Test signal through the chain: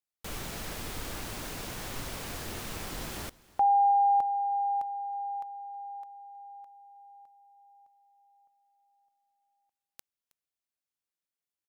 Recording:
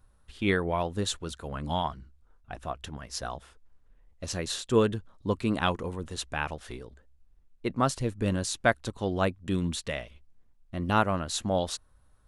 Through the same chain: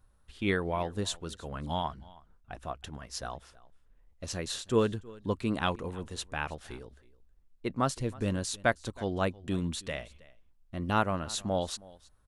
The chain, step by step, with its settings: echo 0.319 s -22 dB; gain -3 dB

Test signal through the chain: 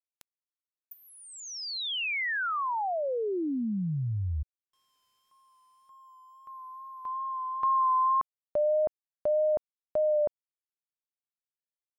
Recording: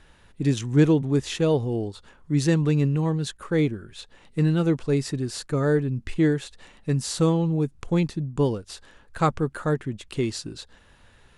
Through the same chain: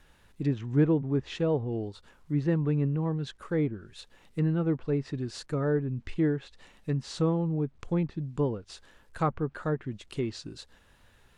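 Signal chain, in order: bit-crush 11-bit; wow and flutter 29 cents; treble ducked by the level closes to 1700 Hz, closed at -19 dBFS; gain -5.5 dB

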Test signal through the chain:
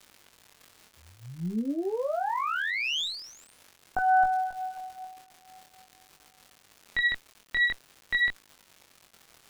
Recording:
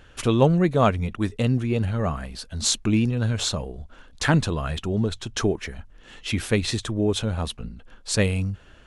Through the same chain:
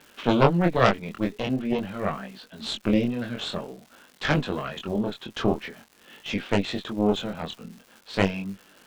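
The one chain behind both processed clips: Chebyshev band-pass 190–3500 Hz, order 3; added harmonics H 4 -7 dB, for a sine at -4.5 dBFS; crackle 220/s -37 dBFS; chorus 0.47 Hz, delay 20 ms, depth 4.7 ms; gain +1.5 dB

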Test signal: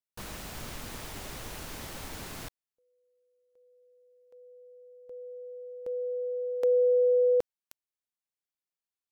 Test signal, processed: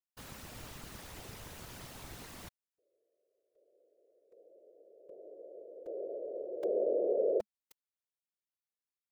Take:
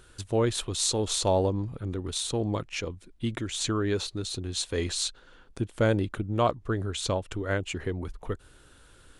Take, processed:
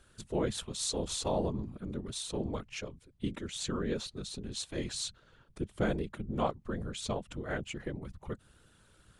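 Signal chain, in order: whisperiser; dynamic EQ 210 Hz, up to +5 dB, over -46 dBFS, Q 5.1; gain -7.5 dB

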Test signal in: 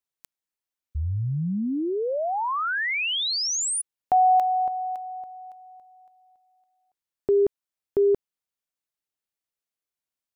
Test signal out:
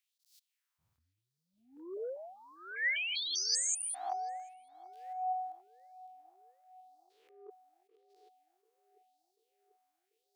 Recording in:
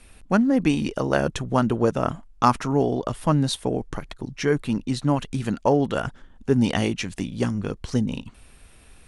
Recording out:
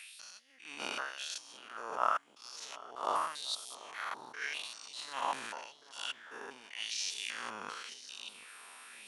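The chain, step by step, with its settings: stepped spectrum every 0.2 s; negative-ratio compressor -30 dBFS, ratio -1; LFO high-pass sine 0.89 Hz 950–4700 Hz; on a send: darkening echo 0.74 s, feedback 77%, low-pass 870 Hz, level -16 dB; on the sum: attack slew limiter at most 130 dB/s

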